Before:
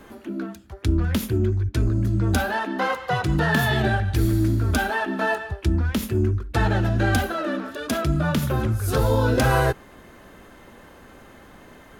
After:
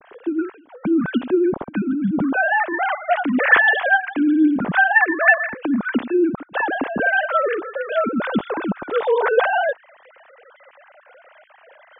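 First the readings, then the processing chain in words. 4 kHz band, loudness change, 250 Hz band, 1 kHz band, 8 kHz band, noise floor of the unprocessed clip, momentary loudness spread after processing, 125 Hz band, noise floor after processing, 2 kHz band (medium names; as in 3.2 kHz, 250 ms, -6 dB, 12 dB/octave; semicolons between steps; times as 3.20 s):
-3.0 dB, +4.0 dB, +5.0 dB, +5.0 dB, under -40 dB, -48 dBFS, 10 LU, -15.5 dB, -52 dBFS, +10.0 dB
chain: formants replaced by sine waves; trim +2.5 dB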